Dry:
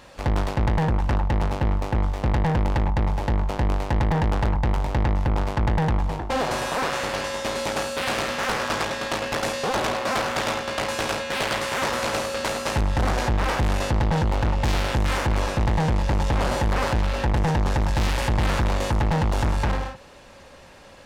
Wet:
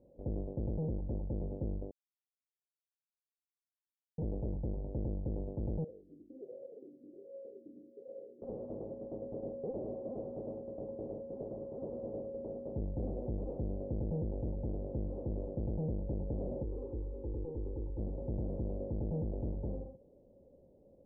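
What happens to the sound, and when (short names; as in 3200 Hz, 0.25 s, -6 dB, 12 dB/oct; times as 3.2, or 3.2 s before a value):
1.91–4.18 mute
5.84–8.42 vowel sweep e-i 1.3 Hz
16.63–17.99 fixed phaser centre 660 Hz, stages 6
whole clip: steep low-pass 540 Hz 36 dB/oct; low shelf 160 Hz -8.5 dB; gain -8.5 dB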